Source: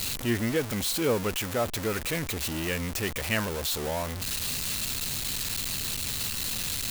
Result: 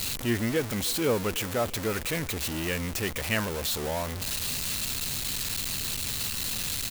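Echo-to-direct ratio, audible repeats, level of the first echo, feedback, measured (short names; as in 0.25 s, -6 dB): -20.5 dB, 2, -21.5 dB, 45%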